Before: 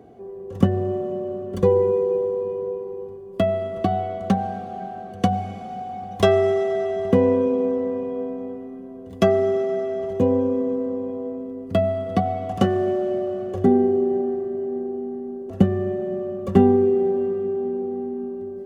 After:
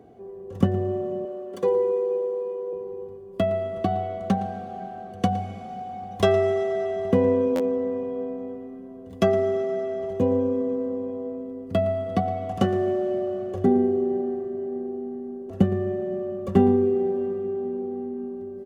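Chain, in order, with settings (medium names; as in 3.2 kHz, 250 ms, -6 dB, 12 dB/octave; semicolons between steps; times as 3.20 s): 1.25–2.73 s: high-pass 370 Hz 12 dB/octave; delay 114 ms -16.5 dB; buffer glitch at 7.55 s, samples 512, times 3; trim -3 dB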